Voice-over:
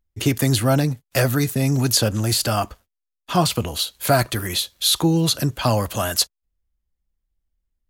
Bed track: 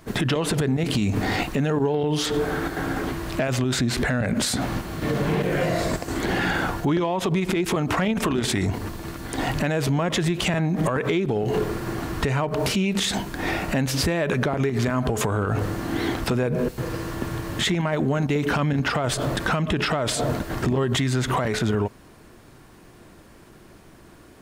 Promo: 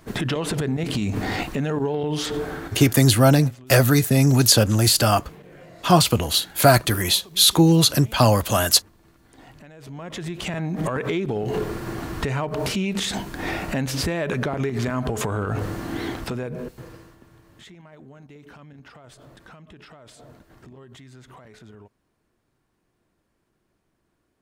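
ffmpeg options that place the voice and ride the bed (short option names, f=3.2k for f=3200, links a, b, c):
-filter_complex "[0:a]adelay=2550,volume=3dB[a];[1:a]volume=18.5dB,afade=t=out:st=2.24:d=0.77:silence=0.0944061,afade=t=in:st=9.77:d=1.17:silence=0.0944061,afade=t=out:st=15.76:d=1.42:silence=0.0841395[b];[a][b]amix=inputs=2:normalize=0"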